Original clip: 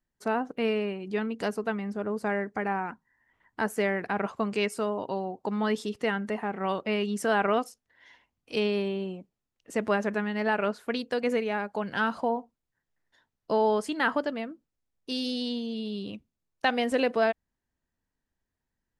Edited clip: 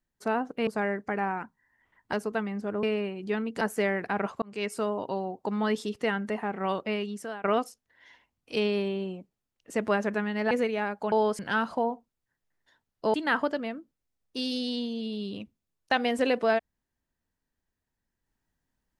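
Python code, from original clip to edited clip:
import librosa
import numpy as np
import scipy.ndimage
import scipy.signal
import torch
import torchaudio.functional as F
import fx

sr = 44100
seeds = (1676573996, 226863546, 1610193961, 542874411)

y = fx.edit(x, sr, fx.swap(start_s=0.67, length_s=0.78, other_s=2.15, other_length_s=1.46),
    fx.fade_in_span(start_s=4.42, length_s=0.34),
    fx.fade_out_to(start_s=6.78, length_s=0.66, floor_db=-22.5),
    fx.cut(start_s=10.51, length_s=0.73),
    fx.move(start_s=13.6, length_s=0.27, to_s=11.85), tone=tone)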